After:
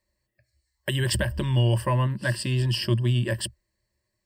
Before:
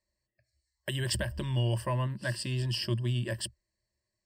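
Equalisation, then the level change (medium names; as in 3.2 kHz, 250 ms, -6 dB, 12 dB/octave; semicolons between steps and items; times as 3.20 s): peaking EQ 5.8 kHz -4.5 dB 1.2 oct; band-stop 660 Hz, Q 12; +7.5 dB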